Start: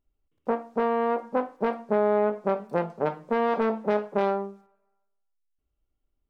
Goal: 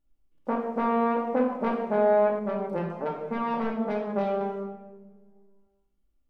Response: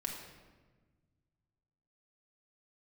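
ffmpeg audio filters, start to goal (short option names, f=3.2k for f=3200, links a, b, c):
-filter_complex "[1:a]atrim=start_sample=2205,asetrate=52920,aresample=44100[a];[0:a][a]afir=irnorm=-1:irlink=0,asettb=1/sr,asplit=3[b][c][d];[b]atrim=end=2.394[e];[c]atrim=start=2.39:end=4.41,asetpts=PTS-STARTPTS,afade=t=in:d=0.004:c=qsin,afade=t=out:st=2.016:d=0.004:c=qsin,flanger=delay=4.3:depth=1.1:regen=49:speed=1.3:shape=sinusoidal[f];[d]atrim=start=4.406[g];[e][f]acrossfade=d=0.004:c1=hsin:c2=qsin[h];[h][g]acrossfade=d=0.004:c1=qsin:c2=hsin,volume=1.5dB"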